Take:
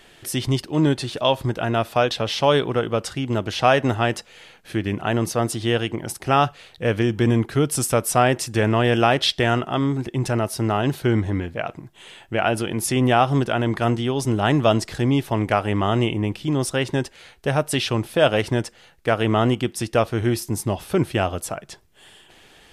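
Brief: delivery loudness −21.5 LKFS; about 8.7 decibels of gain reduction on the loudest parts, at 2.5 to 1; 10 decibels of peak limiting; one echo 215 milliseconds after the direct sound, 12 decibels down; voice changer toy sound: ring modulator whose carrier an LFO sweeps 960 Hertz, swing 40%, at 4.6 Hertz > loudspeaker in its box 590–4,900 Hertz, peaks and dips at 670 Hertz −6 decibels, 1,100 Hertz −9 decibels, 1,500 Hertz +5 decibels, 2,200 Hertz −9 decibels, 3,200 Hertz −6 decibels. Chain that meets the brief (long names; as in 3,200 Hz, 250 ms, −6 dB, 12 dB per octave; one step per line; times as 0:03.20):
downward compressor 2.5 to 1, threshold −25 dBFS
brickwall limiter −20 dBFS
single-tap delay 215 ms −12 dB
ring modulator whose carrier an LFO sweeps 960 Hz, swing 40%, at 4.6 Hz
loudspeaker in its box 590–4,900 Hz, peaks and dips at 670 Hz −6 dB, 1,100 Hz −9 dB, 1,500 Hz +5 dB, 2,200 Hz −9 dB, 3,200 Hz −6 dB
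level +14 dB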